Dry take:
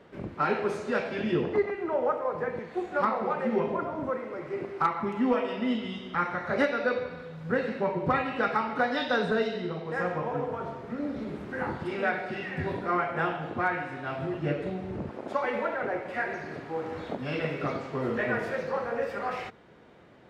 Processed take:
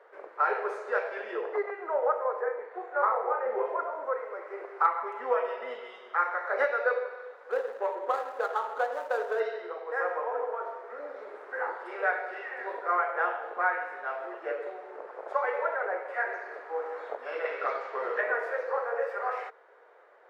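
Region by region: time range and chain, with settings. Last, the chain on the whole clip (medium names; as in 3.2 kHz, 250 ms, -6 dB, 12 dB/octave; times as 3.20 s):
2.41–3.66 s: low-pass 1.6 kHz 6 dB/octave + doubling 35 ms -6 dB
7.50–9.40 s: median filter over 25 samples + peaking EQ 2.2 kHz -3 dB 0.24 oct
17.45–18.21 s: low-pass 4.4 kHz + treble shelf 2.3 kHz +11 dB
whole clip: elliptic high-pass 450 Hz, stop band 70 dB; resonant high shelf 2.2 kHz -9 dB, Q 1.5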